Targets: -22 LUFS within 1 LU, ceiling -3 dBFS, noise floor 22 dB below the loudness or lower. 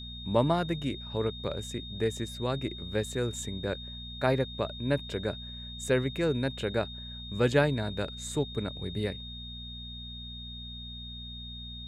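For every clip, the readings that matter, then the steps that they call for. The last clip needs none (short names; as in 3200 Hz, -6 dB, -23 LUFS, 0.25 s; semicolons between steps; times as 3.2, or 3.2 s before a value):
hum 60 Hz; harmonics up to 240 Hz; hum level -41 dBFS; steady tone 3700 Hz; tone level -42 dBFS; loudness -32.0 LUFS; peak -11.5 dBFS; loudness target -22.0 LUFS
-> de-hum 60 Hz, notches 4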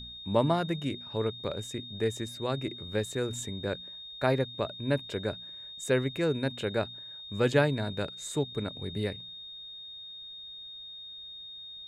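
hum none; steady tone 3700 Hz; tone level -42 dBFS
-> notch 3700 Hz, Q 30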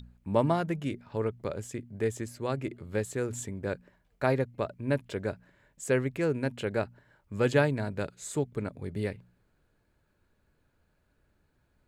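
steady tone none; loudness -32.0 LUFS; peak -12.0 dBFS; loudness target -22.0 LUFS
-> gain +10 dB; limiter -3 dBFS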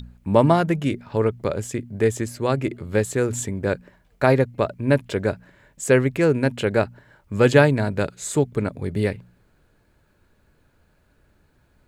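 loudness -22.0 LUFS; peak -3.0 dBFS; noise floor -62 dBFS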